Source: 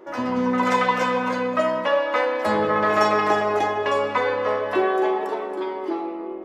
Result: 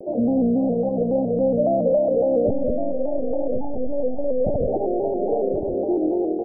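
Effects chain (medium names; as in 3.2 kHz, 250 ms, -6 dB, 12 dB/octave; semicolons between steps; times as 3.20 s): 2.48–4.67 s: monotone LPC vocoder at 8 kHz 270 Hz; bass shelf 460 Hz +11 dB; compression 4:1, threshold -18 dBFS, peak gain reduction 10 dB; hard clipper -19 dBFS, distortion -12 dB; upward compressor, threshold -39 dBFS; steep low-pass 730 Hz 96 dB/octave; bass shelf 190 Hz -6.5 dB; band-stop 370 Hz, Q 12; delay 1073 ms -8 dB; vibrato with a chosen wave square 3.6 Hz, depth 100 cents; trim +5.5 dB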